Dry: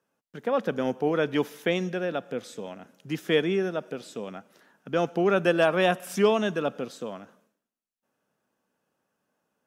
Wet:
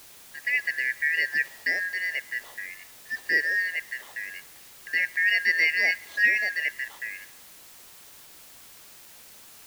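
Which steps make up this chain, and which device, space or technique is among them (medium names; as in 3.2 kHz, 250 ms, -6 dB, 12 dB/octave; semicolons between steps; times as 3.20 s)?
2.66–3.17 s: elliptic high-pass 270 Hz; split-band scrambled radio (four frequency bands reordered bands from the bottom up 3142; band-pass 370–3200 Hz; white noise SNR 20 dB)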